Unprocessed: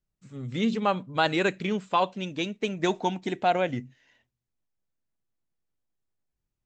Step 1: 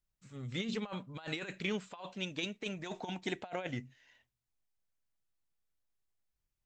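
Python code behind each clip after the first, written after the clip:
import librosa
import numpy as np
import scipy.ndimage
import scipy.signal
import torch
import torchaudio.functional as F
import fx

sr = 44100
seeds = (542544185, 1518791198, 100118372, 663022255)

y = fx.peak_eq(x, sr, hz=240.0, db=-7.5, octaves=2.7)
y = fx.over_compress(y, sr, threshold_db=-32.0, ratio=-0.5)
y = F.gain(torch.from_numpy(y), -5.0).numpy()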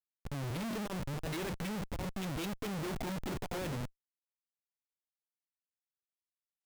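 y = fx.low_shelf(x, sr, hz=260.0, db=10.5)
y = fx.schmitt(y, sr, flips_db=-42.5)
y = F.gain(torch.from_numpy(y), 1.0).numpy()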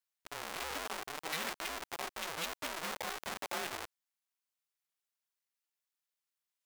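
y = scipy.signal.sosfilt(scipy.signal.butter(2, 760.0, 'highpass', fs=sr, output='sos'), x)
y = y * np.sin(2.0 * np.pi * 160.0 * np.arange(len(y)) / sr)
y = F.gain(torch.from_numpy(y), 8.0).numpy()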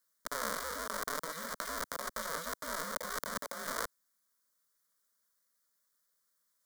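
y = fx.over_compress(x, sr, threshold_db=-45.0, ratio=-1.0)
y = fx.fixed_phaser(y, sr, hz=530.0, stages=8)
y = F.gain(torch.from_numpy(y), 9.0).numpy()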